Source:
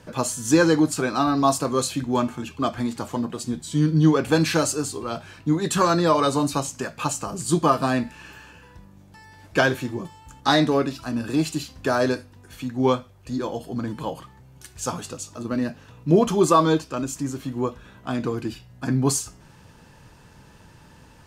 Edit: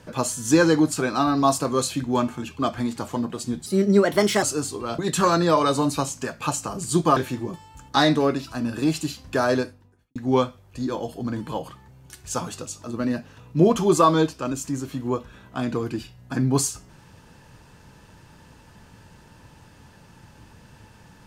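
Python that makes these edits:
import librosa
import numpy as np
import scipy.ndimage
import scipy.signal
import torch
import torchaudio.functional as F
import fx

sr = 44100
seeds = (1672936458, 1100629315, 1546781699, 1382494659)

y = fx.studio_fade_out(x, sr, start_s=12.02, length_s=0.65)
y = fx.edit(y, sr, fx.speed_span(start_s=3.66, length_s=0.98, speed=1.28),
    fx.cut(start_s=5.2, length_s=0.36),
    fx.cut(start_s=7.74, length_s=1.94), tone=tone)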